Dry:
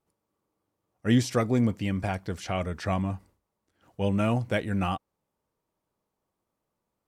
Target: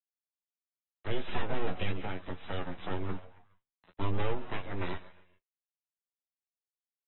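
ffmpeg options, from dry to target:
-filter_complex "[0:a]highpass=f=96:p=1,asplit=3[s0][s1][s2];[s0]afade=t=out:st=1.27:d=0.02[s3];[s1]asplit=2[s4][s5];[s5]highpass=f=720:p=1,volume=15.8,asoftclip=type=tanh:threshold=0.316[s6];[s4][s6]amix=inputs=2:normalize=0,lowpass=f=3700:p=1,volume=0.501,afade=t=in:st=1.27:d=0.02,afade=t=out:st=1.9:d=0.02[s7];[s2]afade=t=in:st=1.9:d=0.02[s8];[s3][s7][s8]amix=inputs=3:normalize=0,asettb=1/sr,asplit=3[s9][s10][s11];[s9]atrim=end=3.094[s12];[s10]atrim=start=3.09:end=4.35,asetpts=PTS-STARTPTS,afade=t=in:d=0.004:c=qsin,afade=t=out:st=1.256:d=0.004:c=qsin,acontrast=33[s13];[s11]atrim=start=4.346[s14];[s12][s13]acrossfade=d=0.004:c1=hsin:c2=qsin[s15];[s15][s14]acrossfade=d=0.004:c1=qsin:c2=hsin,acrusher=bits=7:mix=0:aa=0.000001,asplit=2[s16][s17];[s17]asplit=3[s18][s19][s20];[s18]adelay=136,afreqshift=130,volume=0.112[s21];[s19]adelay=272,afreqshift=260,volume=0.0437[s22];[s20]adelay=408,afreqshift=390,volume=0.017[s23];[s21][s22][s23]amix=inputs=3:normalize=0[s24];[s16][s24]amix=inputs=2:normalize=0,aeval=exprs='abs(val(0))':c=same,asplit=2[s25][s26];[s26]aecho=0:1:11|22:0.531|0.316[s27];[s25][s27]amix=inputs=2:normalize=0,acrossover=split=150|490[s28][s29][s30];[s28]acompressor=threshold=0.158:ratio=4[s31];[s29]acompressor=threshold=0.0282:ratio=4[s32];[s30]acompressor=threshold=0.0251:ratio=4[s33];[s31][s32][s33]amix=inputs=3:normalize=0,volume=0.501" -ar 24000 -c:a aac -b:a 16k

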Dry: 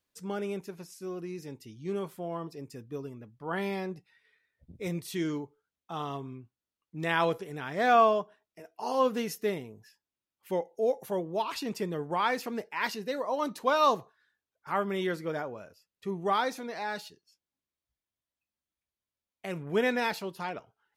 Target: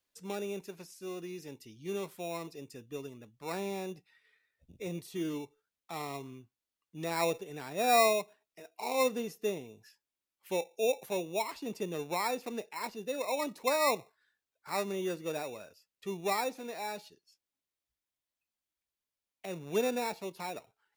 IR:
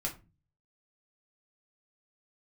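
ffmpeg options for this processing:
-filter_complex "[0:a]equalizer=f=110:w=0.41:g=-7,acrossover=split=290|1100[s0][s1][s2];[s1]acrusher=samples=14:mix=1:aa=0.000001[s3];[s2]acompressor=threshold=0.00316:ratio=6[s4];[s0][s3][s4]amix=inputs=3:normalize=0"

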